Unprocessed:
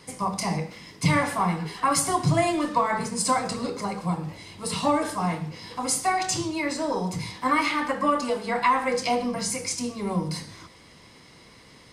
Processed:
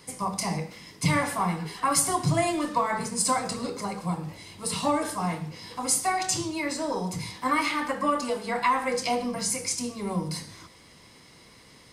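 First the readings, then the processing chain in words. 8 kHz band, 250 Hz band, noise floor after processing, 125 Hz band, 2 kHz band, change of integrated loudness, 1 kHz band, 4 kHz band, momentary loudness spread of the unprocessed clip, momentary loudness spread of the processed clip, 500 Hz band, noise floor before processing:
+1.5 dB, -2.5 dB, -53 dBFS, -2.5 dB, -2.0 dB, -1.5 dB, -2.5 dB, -1.0 dB, 9 LU, 9 LU, -2.5 dB, -51 dBFS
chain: treble shelf 8.5 kHz +8.5 dB; trim -2.5 dB

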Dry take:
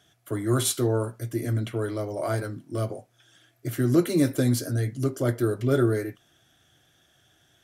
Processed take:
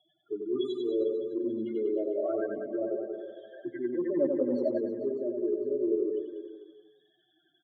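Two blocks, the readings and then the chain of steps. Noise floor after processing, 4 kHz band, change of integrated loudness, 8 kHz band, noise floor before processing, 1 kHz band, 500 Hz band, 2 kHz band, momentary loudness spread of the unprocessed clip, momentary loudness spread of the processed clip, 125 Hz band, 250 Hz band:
-73 dBFS, under -10 dB, -5.0 dB, under -40 dB, -64 dBFS, -12.0 dB, -0.5 dB, -14.0 dB, 11 LU, 12 LU, -29.0 dB, -5.0 dB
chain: loudest bins only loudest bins 8; ladder high-pass 270 Hz, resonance 40%; comb 5.1 ms, depth 62%; reverse; compression 6:1, threshold -37 dBFS, peak gain reduction 18 dB; reverse; reverse bouncing-ball echo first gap 90 ms, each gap 1.15×, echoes 5; time-frequency box 3.52–4.78 s, 480–2000 Hz +12 dB; low-pass 3.3 kHz 24 dB/octave; repeats whose band climbs or falls 177 ms, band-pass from 360 Hz, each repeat 0.7 oct, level -9.5 dB; trim +7.5 dB

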